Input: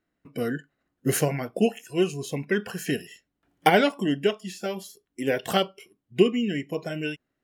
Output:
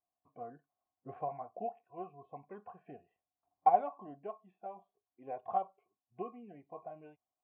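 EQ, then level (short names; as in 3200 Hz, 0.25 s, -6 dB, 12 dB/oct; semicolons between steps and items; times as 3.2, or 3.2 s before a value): vocal tract filter a; bell 91 Hz +10.5 dB 0.52 oct; 0.0 dB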